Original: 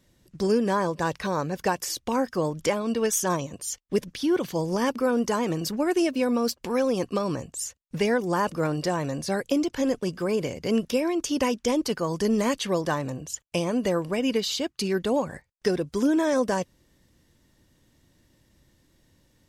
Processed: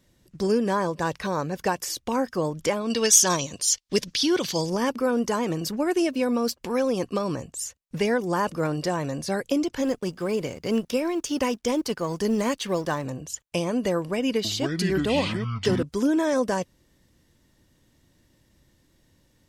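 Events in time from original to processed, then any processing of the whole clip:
0:02.90–0:04.70: parametric band 4,700 Hz +14.5 dB 1.9 octaves
0:09.81–0:13.05: mu-law and A-law mismatch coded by A
0:14.00–0:15.83: delay with pitch and tempo change per echo 445 ms, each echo −7 semitones, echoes 2

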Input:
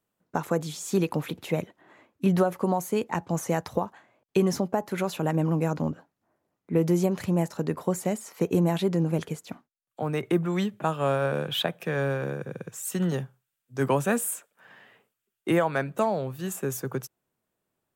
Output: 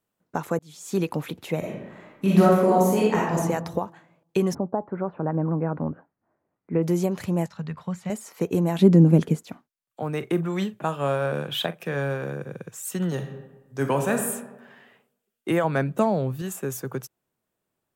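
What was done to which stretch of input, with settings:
0:00.59–0:00.99: fade in
0:01.59–0:03.37: thrown reverb, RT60 1 s, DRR −6 dB
0:04.53–0:06.82: low-pass filter 1,100 Hz → 2,600 Hz 24 dB per octave
0:07.46–0:08.10: drawn EQ curve 200 Hz 0 dB, 290 Hz −19 dB, 1,200 Hz −3 dB, 3,700 Hz −1 dB, 11,000 Hz −21 dB
0:08.78–0:09.43: parametric band 220 Hz +13.5 dB 1.9 octaves
0:10.16–0:12.58: double-tracking delay 42 ms −14 dB
0:13.09–0:14.29: thrown reverb, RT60 1.1 s, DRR 5 dB
0:15.64–0:16.42: parametric band 170 Hz +8 dB 2.6 octaves

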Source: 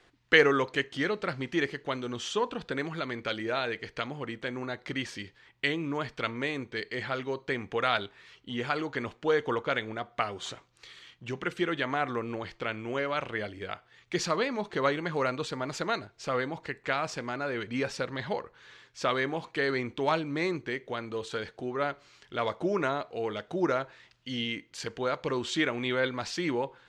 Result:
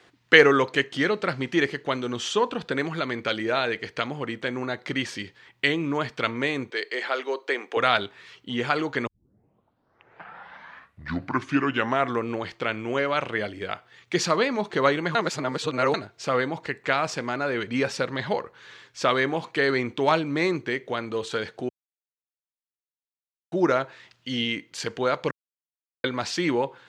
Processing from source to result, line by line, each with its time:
0:06.70–0:07.77: high-pass filter 350 Hz 24 dB per octave
0:09.07: tape start 3.12 s
0:15.15–0:15.94: reverse
0:21.69–0:23.52: silence
0:25.31–0:26.04: silence
whole clip: high-pass filter 100 Hz; level +6 dB

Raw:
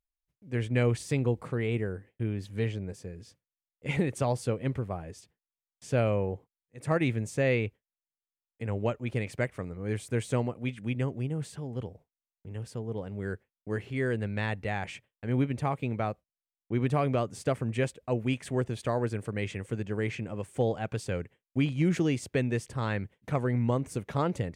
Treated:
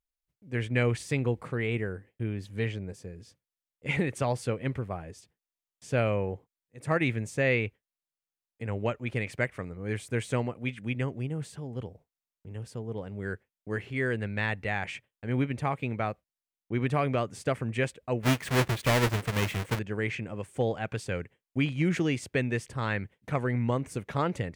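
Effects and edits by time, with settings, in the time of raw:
0:18.23–0:19.79: each half-wave held at its own peak
whole clip: dynamic equaliser 2,000 Hz, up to +6 dB, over −48 dBFS, Q 0.88; level −1 dB

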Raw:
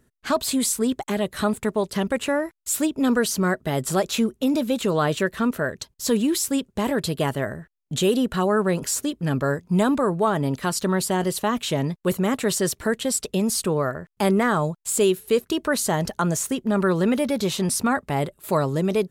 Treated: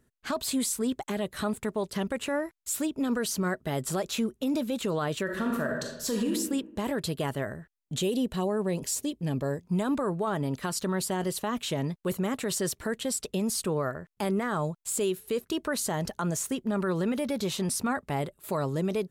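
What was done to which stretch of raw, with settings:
0:05.24–0:06.32: thrown reverb, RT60 0.93 s, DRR 0.5 dB
0:08.02–0:09.62: parametric band 1,400 Hz −12.5 dB 0.59 octaves
whole clip: brickwall limiter −15 dBFS; level −5.5 dB

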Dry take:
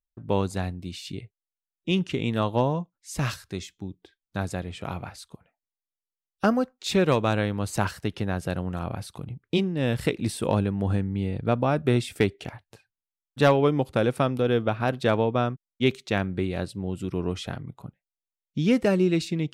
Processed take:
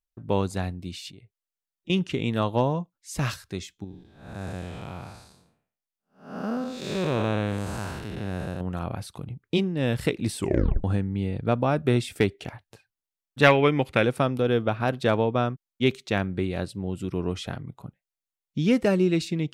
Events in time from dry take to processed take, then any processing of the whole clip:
0:01.10–0:01.90: downward compressor 2 to 1, threshold −55 dBFS
0:03.84–0:08.61: spectrum smeared in time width 278 ms
0:10.37: tape stop 0.47 s
0:13.43–0:14.05: parametric band 2,200 Hz +13 dB 1 octave

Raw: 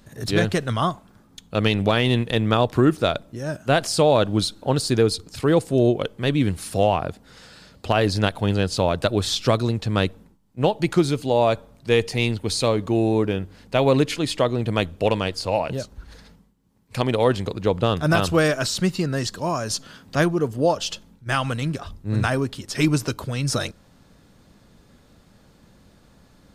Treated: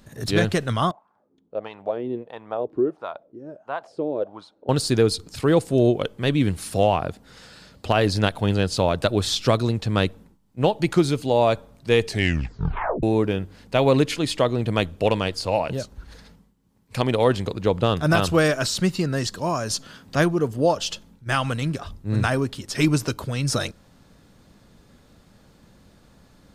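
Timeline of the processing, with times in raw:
0:00.91–0:04.69: LFO wah 1.5 Hz 320–1,000 Hz, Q 3.8
0:12.04: tape stop 0.99 s

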